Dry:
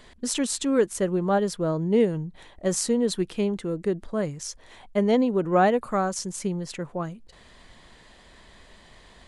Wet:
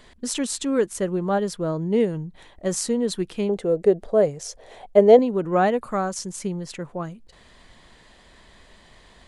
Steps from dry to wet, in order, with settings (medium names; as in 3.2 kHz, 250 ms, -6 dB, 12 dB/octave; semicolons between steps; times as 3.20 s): 3.49–5.19 s: high-order bell 560 Hz +11.5 dB 1.2 oct